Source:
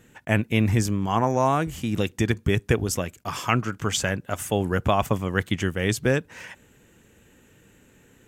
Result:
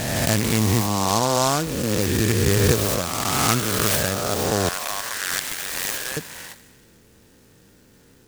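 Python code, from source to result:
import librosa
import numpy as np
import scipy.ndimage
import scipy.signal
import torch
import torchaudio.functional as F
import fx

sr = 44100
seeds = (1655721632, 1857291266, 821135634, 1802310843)

y = fx.spec_swells(x, sr, rise_s=2.21)
y = fx.highpass(y, sr, hz=1500.0, slope=12, at=(4.69, 6.17))
y = fx.echo_wet_highpass(y, sr, ms=65, feedback_pct=74, hz=2000.0, wet_db=-12.5)
y = fx.noise_mod_delay(y, sr, seeds[0], noise_hz=5300.0, depth_ms=0.094)
y = y * 10.0 ** (-1.0 / 20.0)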